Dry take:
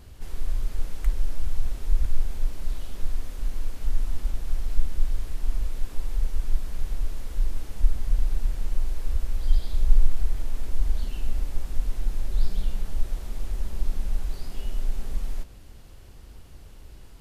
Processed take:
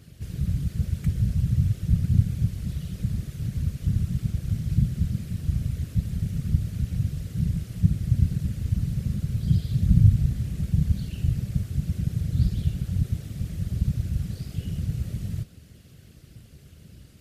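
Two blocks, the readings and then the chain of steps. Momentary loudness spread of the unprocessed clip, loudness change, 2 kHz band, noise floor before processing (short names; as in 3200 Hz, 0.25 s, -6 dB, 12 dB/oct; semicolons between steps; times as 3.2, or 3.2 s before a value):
10 LU, +6.0 dB, n/a, -45 dBFS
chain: whisperiser; HPF 68 Hz; bell 910 Hz -15 dB 0.73 oct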